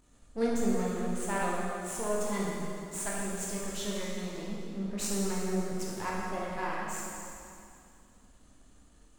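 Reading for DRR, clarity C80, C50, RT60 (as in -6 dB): -5.5 dB, 0.0 dB, -2.0 dB, 2.5 s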